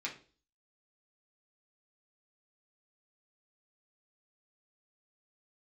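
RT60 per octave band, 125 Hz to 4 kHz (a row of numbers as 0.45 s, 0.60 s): 0.45 s, 0.50 s, 0.45 s, 0.35 s, 0.35 s, 0.40 s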